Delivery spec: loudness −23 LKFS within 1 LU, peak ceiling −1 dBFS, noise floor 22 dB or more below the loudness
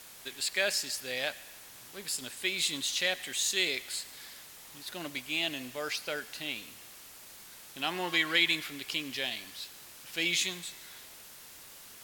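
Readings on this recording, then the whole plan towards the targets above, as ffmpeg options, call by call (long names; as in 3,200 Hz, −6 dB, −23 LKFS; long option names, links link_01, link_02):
background noise floor −51 dBFS; target noise floor −54 dBFS; integrated loudness −31.5 LKFS; sample peak −11.0 dBFS; target loudness −23.0 LKFS
→ -af "afftdn=noise_reduction=6:noise_floor=-51"
-af "volume=8.5dB"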